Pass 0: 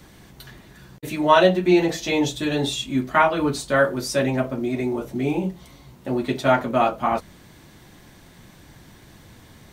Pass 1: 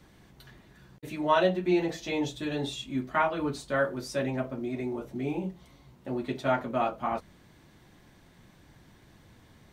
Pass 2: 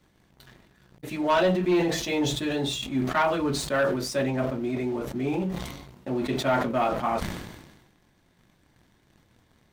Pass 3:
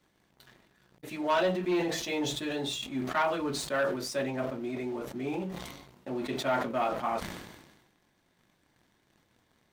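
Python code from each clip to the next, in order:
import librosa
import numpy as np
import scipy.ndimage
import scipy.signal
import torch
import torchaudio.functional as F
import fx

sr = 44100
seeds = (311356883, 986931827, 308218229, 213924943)

y1 = fx.high_shelf(x, sr, hz=5300.0, db=-6.5)
y1 = F.gain(torch.from_numpy(y1), -8.5).numpy()
y2 = fx.hum_notches(y1, sr, base_hz=50, count=3)
y2 = fx.leveller(y2, sr, passes=2)
y2 = fx.sustainer(y2, sr, db_per_s=48.0)
y2 = F.gain(torch.from_numpy(y2), -3.5).numpy()
y3 = fx.low_shelf(y2, sr, hz=170.0, db=-9.5)
y3 = F.gain(torch.from_numpy(y3), -4.0).numpy()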